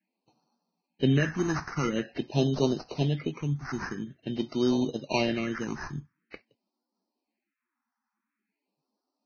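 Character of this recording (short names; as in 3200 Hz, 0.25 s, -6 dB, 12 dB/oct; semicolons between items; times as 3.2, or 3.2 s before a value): aliases and images of a low sample rate 3400 Hz, jitter 0%; phasing stages 4, 0.47 Hz, lowest notch 530–2100 Hz; Vorbis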